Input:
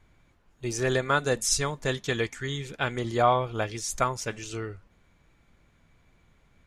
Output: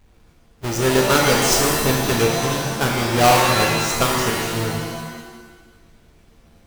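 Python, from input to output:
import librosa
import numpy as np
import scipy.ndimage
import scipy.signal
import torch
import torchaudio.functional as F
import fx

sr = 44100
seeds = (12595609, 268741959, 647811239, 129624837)

y = fx.halfwave_hold(x, sr)
y = fx.rev_shimmer(y, sr, seeds[0], rt60_s=1.2, semitones=7, shimmer_db=-2, drr_db=0.0)
y = y * librosa.db_to_amplitude(1.0)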